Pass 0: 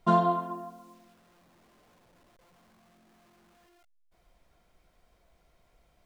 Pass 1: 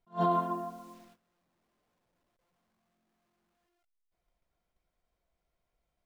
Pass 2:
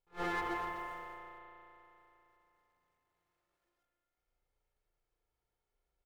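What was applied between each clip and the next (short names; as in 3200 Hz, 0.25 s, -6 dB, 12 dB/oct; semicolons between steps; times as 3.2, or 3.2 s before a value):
gate -58 dBFS, range -19 dB; limiter -20.5 dBFS, peak gain reduction 9.5 dB; attack slew limiter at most 330 dB/s; gain +3 dB
minimum comb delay 2.3 ms; echo 0.246 s -9.5 dB; reverb RT60 3.2 s, pre-delay 35 ms, DRR 1.5 dB; gain -6 dB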